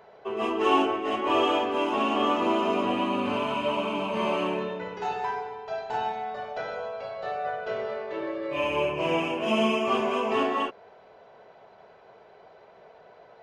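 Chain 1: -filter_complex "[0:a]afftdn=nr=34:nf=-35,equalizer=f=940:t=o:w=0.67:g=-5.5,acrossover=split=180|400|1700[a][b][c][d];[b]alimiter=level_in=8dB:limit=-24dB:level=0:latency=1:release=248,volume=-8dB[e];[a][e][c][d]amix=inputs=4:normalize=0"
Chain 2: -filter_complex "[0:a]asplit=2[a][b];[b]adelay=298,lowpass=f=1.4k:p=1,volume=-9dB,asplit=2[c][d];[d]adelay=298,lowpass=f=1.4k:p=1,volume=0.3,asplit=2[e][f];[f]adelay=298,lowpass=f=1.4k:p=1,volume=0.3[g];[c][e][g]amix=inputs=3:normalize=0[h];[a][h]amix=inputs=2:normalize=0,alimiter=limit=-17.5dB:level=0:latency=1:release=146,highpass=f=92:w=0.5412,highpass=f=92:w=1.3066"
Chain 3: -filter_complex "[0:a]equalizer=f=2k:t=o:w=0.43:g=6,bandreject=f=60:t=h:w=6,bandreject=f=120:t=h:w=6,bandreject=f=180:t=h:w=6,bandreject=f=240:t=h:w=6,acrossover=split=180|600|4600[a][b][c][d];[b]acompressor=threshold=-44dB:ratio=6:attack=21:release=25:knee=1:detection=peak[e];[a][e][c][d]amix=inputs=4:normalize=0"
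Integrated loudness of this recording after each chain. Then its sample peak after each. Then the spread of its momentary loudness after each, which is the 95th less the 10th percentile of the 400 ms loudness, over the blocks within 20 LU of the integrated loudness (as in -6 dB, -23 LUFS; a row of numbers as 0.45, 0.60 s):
-30.0, -29.0, -29.0 LUFS; -13.5, -16.0, -11.5 dBFS; 10, 7, 9 LU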